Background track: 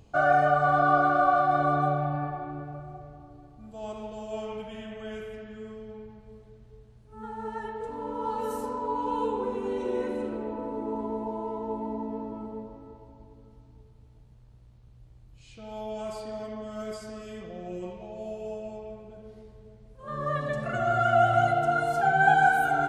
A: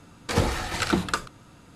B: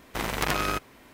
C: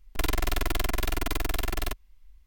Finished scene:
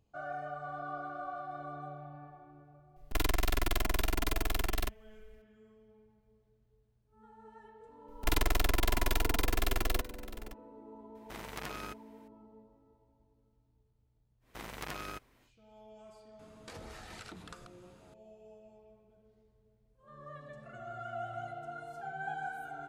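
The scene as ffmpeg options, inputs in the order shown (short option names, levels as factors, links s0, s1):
-filter_complex "[3:a]asplit=2[s0][s1];[2:a]asplit=2[s2][s3];[0:a]volume=0.112[s4];[s1]aecho=1:1:659:0.158[s5];[1:a]acompressor=threshold=0.0158:ratio=6:attack=3.2:release=140:knee=1:detection=peak[s6];[s0]atrim=end=2.46,asetpts=PTS-STARTPTS,volume=0.668,afade=t=in:d=0.004:c=hsin,afade=t=out:st=2.456:d=0.004:c=hsin,adelay=2960[s7];[s5]atrim=end=2.46,asetpts=PTS-STARTPTS,volume=0.794,afade=t=in:d=0.004:c=hsin,afade=t=out:st=2.456:d=0.004:c=hsin,adelay=8080[s8];[s2]atrim=end=1.13,asetpts=PTS-STARTPTS,volume=0.168,afade=t=in:d=0.004:c=hsin,afade=t=out:st=1.126:d=0.004:c=hsin,adelay=11150[s9];[s3]atrim=end=1.13,asetpts=PTS-STARTPTS,volume=0.178,afade=t=in:d=0.1,afade=t=out:st=1.03:d=0.1,adelay=14400[s10];[s6]atrim=end=1.75,asetpts=PTS-STARTPTS,volume=0.335,afade=t=in:d=0.004:c=hsin,afade=t=out:st=1.746:d=0.004:c=hsin,adelay=16390[s11];[s4][s7][s8][s9][s10][s11]amix=inputs=6:normalize=0"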